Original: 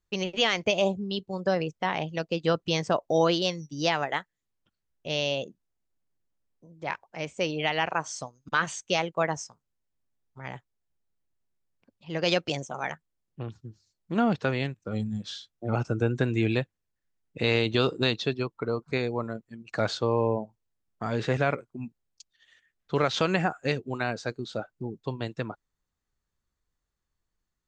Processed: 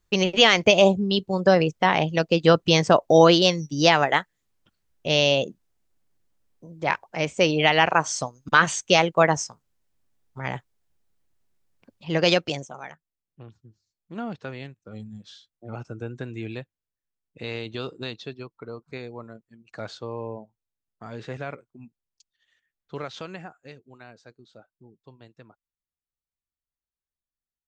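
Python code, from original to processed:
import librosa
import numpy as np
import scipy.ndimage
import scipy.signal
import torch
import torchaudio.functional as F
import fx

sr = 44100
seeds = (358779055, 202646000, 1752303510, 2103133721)

y = fx.gain(x, sr, db=fx.line((12.13, 8.5), (12.62, -0.5), (12.9, -8.5), (22.96, -8.5), (23.69, -17.0)))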